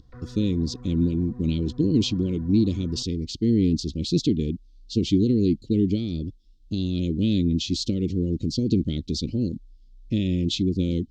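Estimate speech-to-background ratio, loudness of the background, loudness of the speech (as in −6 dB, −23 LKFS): 19.0 dB, −43.5 LKFS, −24.5 LKFS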